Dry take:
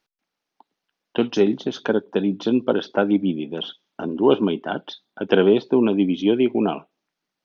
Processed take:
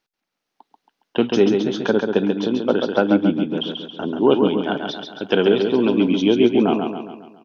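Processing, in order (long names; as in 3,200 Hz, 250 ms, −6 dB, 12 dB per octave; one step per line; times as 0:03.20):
0:02.18–0:02.64: downward compressor, threshold −19 dBFS, peak gain reduction 6 dB
0:04.57–0:06.33: high-shelf EQ 3,900 Hz +10.5 dB
automatic gain control gain up to 5.5 dB
on a send: repeating echo 137 ms, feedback 50%, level −5 dB
on the sum: level −1.5 dB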